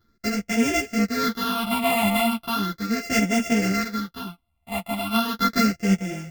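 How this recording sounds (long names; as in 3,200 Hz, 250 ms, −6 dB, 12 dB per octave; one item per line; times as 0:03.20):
a buzz of ramps at a fixed pitch in blocks of 64 samples
phaser sweep stages 6, 0.37 Hz, lowest notch 410–1,100 Hz
sample-and-hold tremolo
a shimmering, thickened sound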